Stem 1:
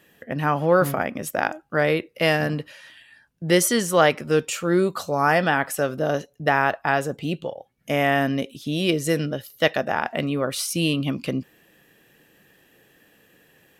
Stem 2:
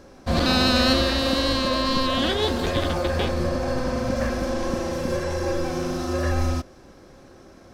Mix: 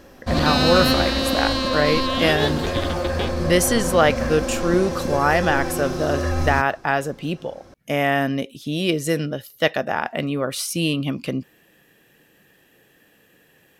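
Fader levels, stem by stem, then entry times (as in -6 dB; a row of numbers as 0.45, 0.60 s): +0.5, +0.5 dB; 0.00, 0.00 s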